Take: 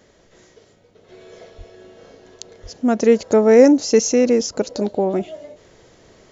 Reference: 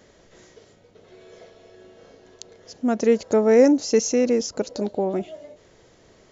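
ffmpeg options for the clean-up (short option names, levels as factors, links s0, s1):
-filter_complex "[0:a]asplit=3[s0][s1][s2];[s0]afade=t=out:st=1.57:d=0.02[s3];[s1]highpass=f=140:w=0.5412,highpass=f=140:w=1.3066,afade=t=in:st=1.57:d=0.02,afade=t=out:st=1.69:d=0.02[s4];[s2]afade=t=in:st=1.69:d=0.02[s5];[s3][s4][s5]amix=inputs=3:normalize=0,asplit=3[s6][s7][s8];[s6]afade=t=out:st=2.62:d=0.02[s9];[s7]highpass=f=140:w=0.5412,highpass=f=140:w=1.3066,afade=t=in:st=2.62:d=0.02,afade=t=out:st=2.74:d=0.02[s10];[s8]afade=t=in:st=2.74:d=0.02[s11];[s9][s10][s11]amix=inputs=3:normalize=0,asetnsamples=n=441:p=0,asendcmd='1.09 volume volume -4.5dB',volume=1"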